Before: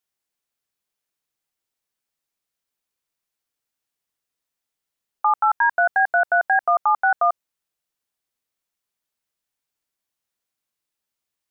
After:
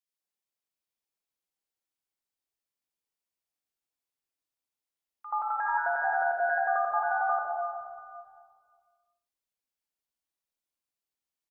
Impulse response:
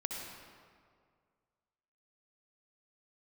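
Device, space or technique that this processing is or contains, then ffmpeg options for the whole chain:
stairwell: -filter_complex "[1:a]atrim=start_sample=2205[link_01];[0:a][link_01]afir=irnorm=-1:irlink=0,acrossover=split=160|1600[link_02][link_03][link_04];[link_03]adelay=80[link_05];[link_02]adelay=680[link_06];[link_06][link_05][link_04]amix=inputs=3:normalize=0,volume=-8.5dB"

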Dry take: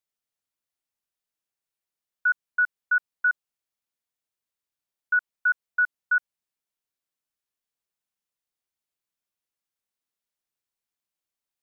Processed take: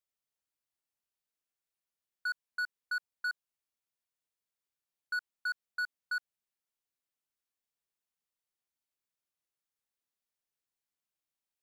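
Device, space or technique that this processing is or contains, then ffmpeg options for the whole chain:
limiter into clipper: -af "alimiter=limit=-21dB:level=0:latency=1,asoftclip=type=hard:threshold=-26.5dB,volume=-4dB"

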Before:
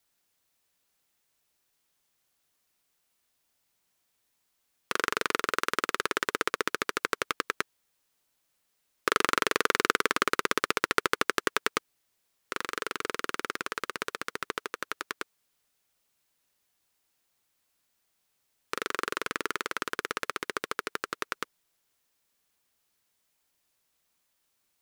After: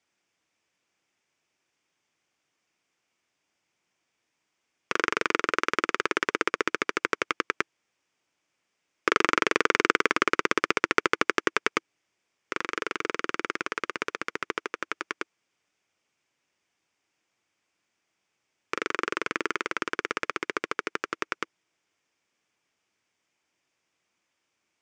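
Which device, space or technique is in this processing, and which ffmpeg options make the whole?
car door speaker: -af "highpass=97,equalizer=frequency=330:width_type=q:width=4:gain=5,equalizer=frequency=2300:width_type=q:width=4:gain=5,equalizer=frequency=4100:width_type=q:width=4:gain=-9,lowpass=frequency=6600:width=0.5412,lowpass=frequency=6600:width=1.3066,volume=2dB"

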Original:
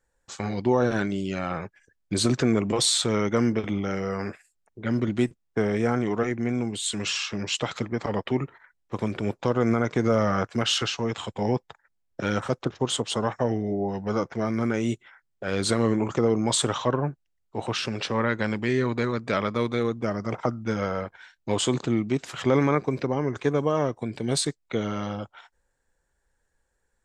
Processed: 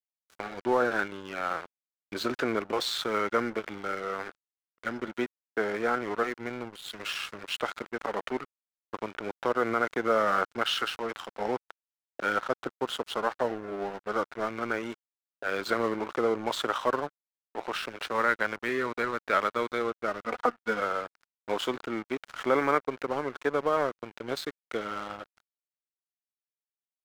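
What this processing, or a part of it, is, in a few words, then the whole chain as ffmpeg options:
pocket radio on a weak battery: -filter_complex "[0:a]asettb=1/sr,asplit=3[link_01][link_02][link_03];[link_01]atrim=end=20.264[link_04];[link_02]atrim=start=20.26:end=20.8,asetpts=PTS-STARTPTS,afade=type=in:duration=0.004:curve=qsin,afade=type=out:start_time=0.536:duration=0.004:curve=qsin,aecho=1:1:4.1:0.8,atrim=end_sample=23814[link_05];[link_03]atrim=start=20.796[link_06];[link_04][link_05]acrossfade=duration=0.004:curve1=hsin:curve2=qsin[link_07];[link_07][link_06]acrossfade=duration=0.004:curve1=qsin:curve2=hsin,highpass=400,lowpass=3300,aeval=exprs='sgn(val(0))*max(abs(val(0))-0.0106,0)':channel_layout=same,equalizer=frequency=1400:width_type=o:width=0.43:gain=7"

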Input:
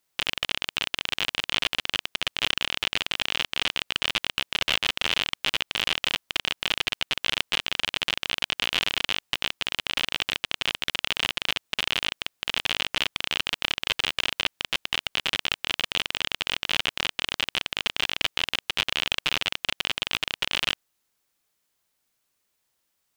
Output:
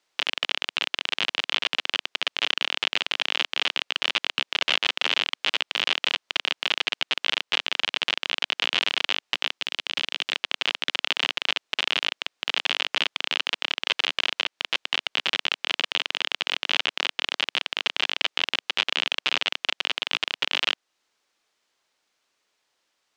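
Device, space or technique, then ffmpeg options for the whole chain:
DJ mixer with the lows and highs turned down: -filter_complex "[0:a]acrossover=split=260 6800:gain=0.178 1 0.0794[link_01][link_02][link_03];[link_01][link_02][link_03]amix=inputs=3:normalize=0,alimiter=limit=-13.5dB:level=0:latency=1:release=300,asettb=1/sr,asplit=3[link_04][link_05][link_06];[link_04]atrim=end=9.584[link_07];[link_05]atrim=start=9.58:end=10.32,asetpts=PTS-STARTPTS,afade=type=in:duration=0.004:curve=qsin,afade=type=out:start_time=0.736:duration=0.004:curve=qsin,equalizer=frequency=1000:width=0.44:gain=-5.5[link_08];[link_06]atrim=start=10.316[link_09];[link_07][link_08]acrossfade=duration=0.004:curve1=hsin:curve2=qsin[link_10];[link_10][link_09]acrossfade=duration=0.004:curve1=qsin:curve2=hsin,volume=6.5dB"

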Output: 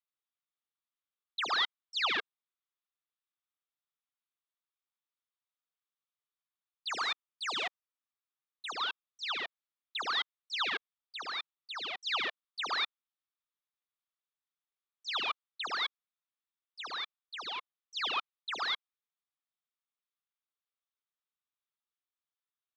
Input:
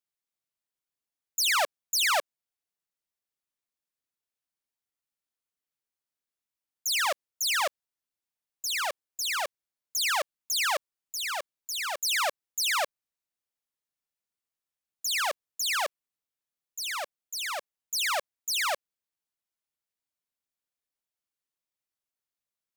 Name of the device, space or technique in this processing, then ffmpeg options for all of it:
voice changer toy: -filter_complex "[0:a]aeval=exprs='val(0)*sin(2*PI*2000*n/s+2000*0.5/0.7*sin(2*PI*0.7*n/s))':channel_layout=same,highpass=500,equalizer=frequency=570:width_type=q:width=4:gain=-8,equalizer=frequency=1200:width_type=q:width=4:gain=8,equalizer=frequency=3600:width_type=q:width=4:gain=7,lowpass=frequency=3900:width=0.5412,lowpass=frequency=3900:width=1.3066,asettb=1/sr,asplit=3[link_01][link_02][link_03];[link_01]atrim=end=6.894[link_04];[link_02]atrim=start=6.89:end=8.72,asetpts=PTS-STARTPTS,afade=type=in:duration=0.004:curve=qsin,afade=type=out:start_time=1.826:duration=0.004:curve=qsin,highshelf=frequency=5800:width_type=q:width=1.5:gain=9[link_05];[link_03]atrim=start=8.716[link_06];[link_04][link_05]acrossfade=duration=0.004:curve1=hsin:curve2=qsin[link_07];[link_07][link_06]acrossfade=duration=0.004:curve1=qsin:curve2=hsin,volume=-3dB"

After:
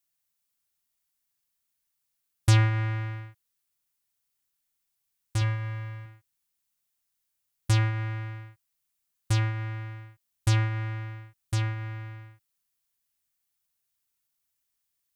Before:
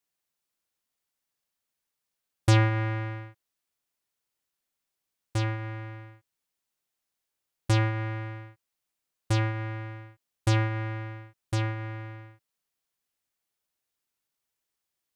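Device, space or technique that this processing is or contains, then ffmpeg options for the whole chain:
smiley-face EQ: -filter_complex "[0:a]lowshelf=frequency=120:gain=5.5,equalizer=frequency=450:width_type=o:width=1.5:gain=-8,highshelf=frequency=7500:gain=8.5,asettb=1/sr,asplit=3[link_01][link_02][link_03];[link_01]atrim=end=5.414[link_04];[link_02]atrim=start=5.41:end=6.06,asetpts=PTS-STARTPTS,afade=type=in:duration=0.004:curve=qsin,afade=type=out:start_time=0.646:duration=0.004:curve=qsin,aecho=1:1:1.8:0.58,atrim=end_sample=28665[link_05];[link_03]atrim=start=6.056[link_06];[link_04][link_05]acrossfade=duration=0.004:curve1=hsin:curve2=qsin[link_07];[link_07][link_06]acrossfade=duration=0.004:curve1=qsin:curve2=hsin,volume=-1dB"

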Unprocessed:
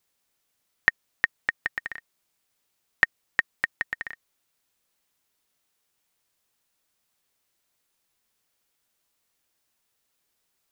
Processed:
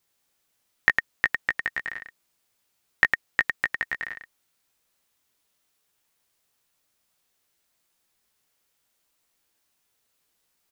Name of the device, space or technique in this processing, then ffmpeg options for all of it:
slapback doubling: -filter_complex "[0:a]asplit=3[link_01][link_02][link_03];[link_02]adelay=17,volume=-5.5dB[link_04];[link_03]adelay=105,volume=-5dB[link_05];[link_01][link_04][link_05]amix=inputs=3:normalize=0"

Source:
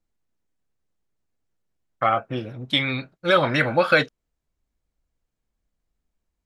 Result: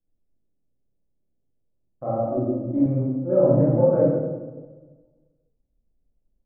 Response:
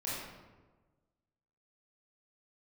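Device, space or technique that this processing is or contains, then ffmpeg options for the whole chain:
next room: -filter_complex "[0:a]lowpass=frequency=620:width=0.5412,lowpass=frequency=620:width=1.3066[link_01];[1:a]atrim=start_sample=2205[link_02];[link_01][link_02]afir=irnorm=-1:irlink=0,asettb=1/sr,asplit=3[link_03][link_04][link_05];[link_03]atrim=end=2.274[link_06];[link_04]atrim=start=2.27:end=2.86,asetpts=PTS-STARTPTS,afade=type=in:duration=0.004:curve=qsin,afade=type=out:start_time=0.586:duration=0.004:curve=qsin,aecho=1:1:3.3:0.73,atrim=end_sample=26019[link_07];[link_05]atrim=start=2.856[link_08];[link_06][link_07]acrossfade=duration=0.004:curve1=hsin:curve2=qsin[link_09];[link_09][link_08]acrossfade=duration=0.004:curve1=qsin:curve2=hsin"

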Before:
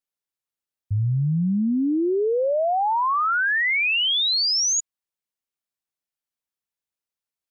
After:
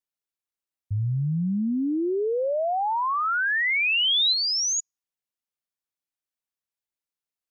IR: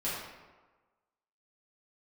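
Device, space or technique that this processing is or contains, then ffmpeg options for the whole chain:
keyed gated reverb: -filter_complex "[0:a]asplit=3[link_01][link_02][link_03];[link_01]afade=type=out:start_time=3.23:duration=0.02[link_04];[link_02]aemphasis=mode=production:type=bsi,afade=type=in:start_time=3.23:duration=0.02,afade=type=out:start_time=4.32:duration=0.02[link_05];[link_03]afade=type=in:start_time=4.32:duration=0.02[link_06];[link_04][link_05][link_06]amix=inputs=3:normalize=0,asplit=3[link_07][link_08][link_09];[1:a]atrim=start_sample=2205[link_10];[link_08][link_10]afir=irnorm=-1:irlink=0[link_11];[link_09]apad=whole_len=331119[link_12];[link_11][link_12]sidechaingate=range=-48dB:threshold=-14dB:ratio=16:detection=peak,volume=-6dB[link_13];[link_07][link_13]amix=inputs=2:normalize=0,volume=-3.5dB"

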